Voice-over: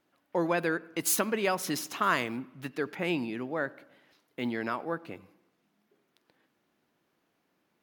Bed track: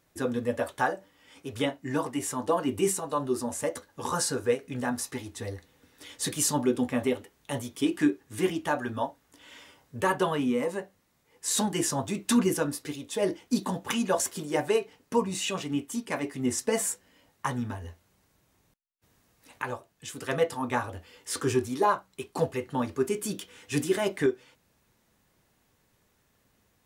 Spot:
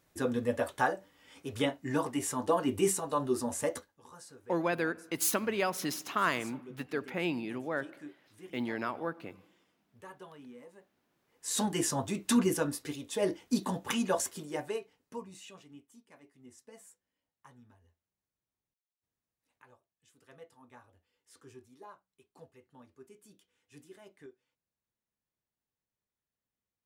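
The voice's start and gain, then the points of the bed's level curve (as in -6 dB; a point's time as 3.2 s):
4.15 s, -2.5 dB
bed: 3.79 s -2 dB
4 s -23.5 dB
10.79 s -23.5 dB
11.65 s -3 dB
14.06 s -3 dB
16.08 s -27 dB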